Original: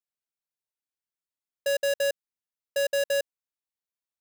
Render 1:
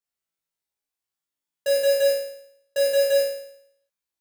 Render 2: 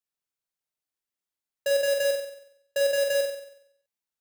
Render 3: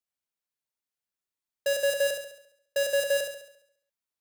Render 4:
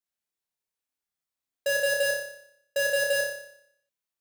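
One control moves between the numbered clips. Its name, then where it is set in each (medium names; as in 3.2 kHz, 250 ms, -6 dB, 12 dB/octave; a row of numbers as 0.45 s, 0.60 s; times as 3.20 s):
flutter echo, walls apart: 3.1 m, 8 m, 11.8 m, 5.1 m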